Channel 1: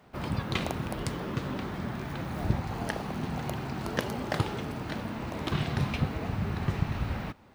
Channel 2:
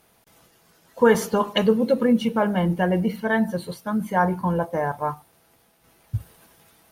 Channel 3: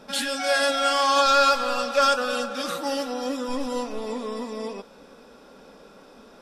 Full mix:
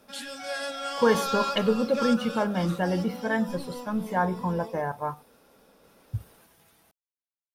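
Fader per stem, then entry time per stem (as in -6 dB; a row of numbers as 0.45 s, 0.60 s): mute, -5.0 dB, -11.0 dB; mute, 0.00 s, 0.00 s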